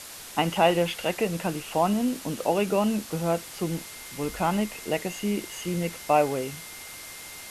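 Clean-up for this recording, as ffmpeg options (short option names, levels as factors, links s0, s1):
-af "bandreject=f=2100:w=30,afwtdn=0.01"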